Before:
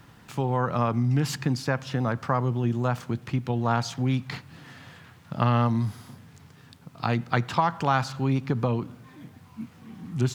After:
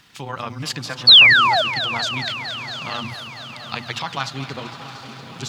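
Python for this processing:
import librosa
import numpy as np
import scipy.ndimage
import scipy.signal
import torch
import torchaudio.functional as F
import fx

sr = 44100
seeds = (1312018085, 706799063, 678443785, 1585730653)

y = fx.high_shelf(x, sr, hz=5600.0, db=7.5)
y = fx.hum_notches(y, sr, base_hz=60, count=4)
y = fx.echo_diffused(y, sr, ms=1384, feedback_pct=56, wet_db=-11.0)
y = fx.vibrato(y, sr, rate_hz=8.5, depth_cents=17.0)
y = fx.stretch_grains(y, sr, factor=0.53, grain_ms=68.0)
y = fx.spec_paint(y, sr, seeds[0], shape='fall', start_s=1.07, length_s=0.55, low_hz=590.0, high_hz=4600.0, level_db=-15.0)
y = fx.peak_eq(y, sr, hz=3500.0, db=15.0, octaves=2.3)
y = fx.echo_crushed(y, sr, ms=229, feedback_pct=80, bits=9, wet_db=-14.0)
y = F.gain(torch.from_numpy(y), -6.0).numpy()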